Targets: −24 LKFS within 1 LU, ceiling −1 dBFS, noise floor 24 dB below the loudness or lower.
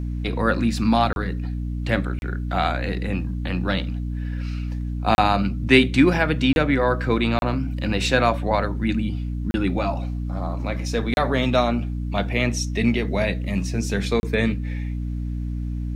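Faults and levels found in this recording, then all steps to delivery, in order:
number of dropouts 8; longest dropout 31 ms; mains hum 60 Hz; hum harmonics up to 300 Hz; level of the hum −24 dBFS; integrated loudness −23.0 LKFS; sample peak −1.5 dBFS; target loudness −24.0 LKFS
→ repair the gap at 0:01.13/0:02.19/0:05.15/0:06.53/0:07.39/0:09.51/0:11.14/0:14.20, 31 ms
hum removal 60 Hz, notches 5
level −1 dB

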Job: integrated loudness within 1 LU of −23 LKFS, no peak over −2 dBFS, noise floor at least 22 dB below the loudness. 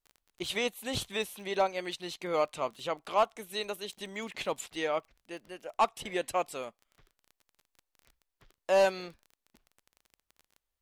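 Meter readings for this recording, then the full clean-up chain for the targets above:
crackle rate 22 per second; integrated loudness −32.5 LKFS; sample peak −17.0 dBFS; target loudness −23.0 LKFS
→ click removal
level +9.5 dB

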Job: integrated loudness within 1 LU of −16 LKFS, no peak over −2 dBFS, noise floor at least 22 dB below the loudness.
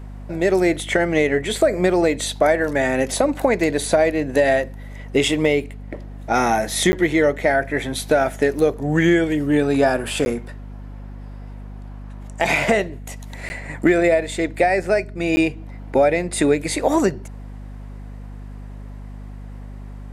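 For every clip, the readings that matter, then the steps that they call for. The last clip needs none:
number of dropouts 4; longest dropout 10 ms; mains hum 50 Hz; hum harmonics up to 250 Hz; level of the hum −32 dBFS; integrated loudness −19.5 LKFS; sample peak −4.5 dBFS; target loudness −16.0 LKFS
→ repair the gap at 0:06.92/0:10.25/0:13.49/0:15.36, 10 ms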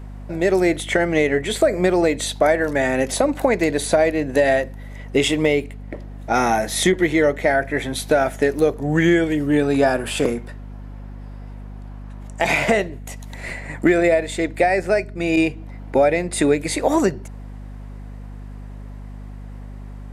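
number of dropouts 0; mains hum 50 Hz; hum harmonics up to 250 Hz; level of the hum −32 dBFS
→ mains-hum notches 50/100/150/200/250 Hz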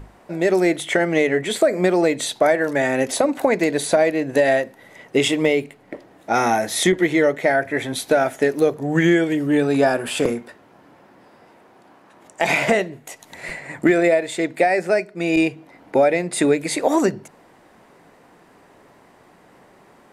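mains hum none found; integrated loudness −19.5 LKFS; sample peak −4.0 dBFS; target loudness −16.0 LKFS
→ level +3.5 dB
brickwall limiter −2 dBFS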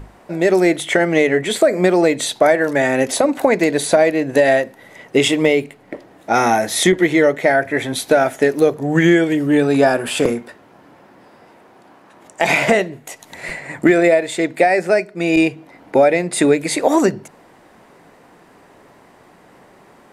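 integrated loudness −16.0 LKFS; sample peak −2.0 dBFS; background noise floor −48 dBFS

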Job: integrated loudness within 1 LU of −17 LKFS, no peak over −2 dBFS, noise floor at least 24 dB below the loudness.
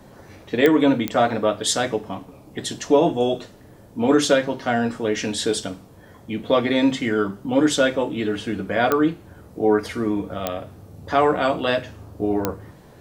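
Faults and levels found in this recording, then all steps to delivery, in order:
number of clicks 5; integrated loudness −21.5 LKFS; sample peak −3.0 dBFS; target loudness −17.0 LKFS
→ click removal
level +4.5 dB
brickwall limiter −2 dBFS

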